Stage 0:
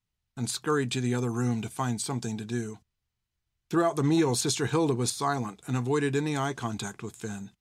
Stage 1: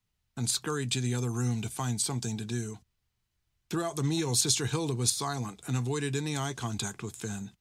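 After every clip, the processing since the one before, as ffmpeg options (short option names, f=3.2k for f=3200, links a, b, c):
-filter_complex "[0:a]acrossover=split=120|3000[a][b][c];[b]acompressor=threshold=-44dB:ratio=2[d];[a][d][c]amix=inputs=3:normalize=0,volume=4dB"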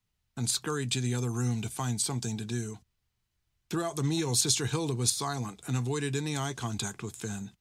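-af anull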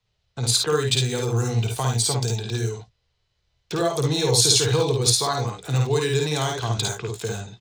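-filter_complex "[0:a]equalizer=f=125:t=o:w=1:g=5,equalizer=f=250:t=o:w=1:g=-11,equalizer=f=500:t=o:w=1:g=12,equalizer=f=4k:t=o:w=1:g=6,aecho=1:1:53|70:0.708|0.422,acrossover=split=450|7200[a][b][c];[c]aeval=exprs='val(0)*gte(abs(val(0)),0.00708)':c=same[d];[a][b][d]amix=inputs=3:normalize=0,volume=4dB"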